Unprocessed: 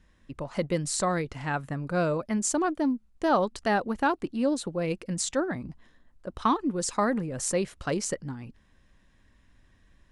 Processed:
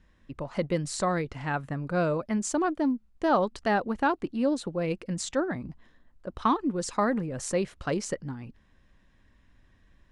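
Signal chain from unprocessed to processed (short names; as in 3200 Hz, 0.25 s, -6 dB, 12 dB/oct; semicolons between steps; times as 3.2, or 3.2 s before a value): high shelf 7700 Hz -11.5 dB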